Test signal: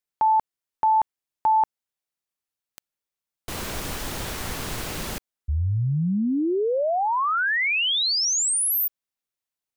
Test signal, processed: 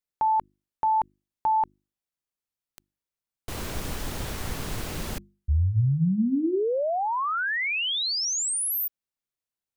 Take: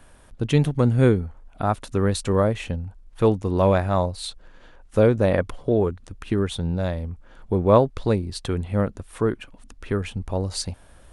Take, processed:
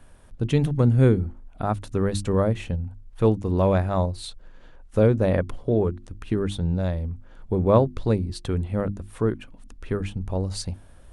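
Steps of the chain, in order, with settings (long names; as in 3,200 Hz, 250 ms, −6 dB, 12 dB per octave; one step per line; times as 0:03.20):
low-shelf EQ 340 Hz +7 dB
mains-hum notches 50/100/150/200/250/300/350 Hz
level −4.5 dB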